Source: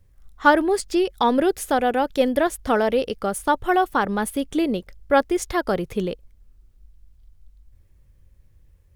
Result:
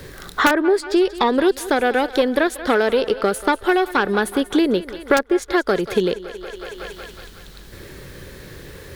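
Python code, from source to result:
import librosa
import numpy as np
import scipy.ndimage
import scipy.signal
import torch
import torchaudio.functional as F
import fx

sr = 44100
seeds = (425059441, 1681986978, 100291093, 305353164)

p1 = fx.diode_clip(x, sr, knee_db=-15.5)
p2 = fx.graphic_eq_15(p1, sr, hz=(100, 400, 1600, 4000), db=(-4, 9, 9, 9))
p3 = p2 + fx.echo_thinned(p2, sr, ms=185, feedback_pct=60, hz=380.0, wet_db=-17.0, dry=0)
p4 = (np.mod(10.0 ** (2.5 / 20.0) * p3 + 1.0, 2.0) - 1.0) / 10.0 ** (2.5 / 20.0)
p5 = fx.band_squash(p4, sr, depth_pct=100)
y = p5 * librosa.db_to_amplitude(-1.5)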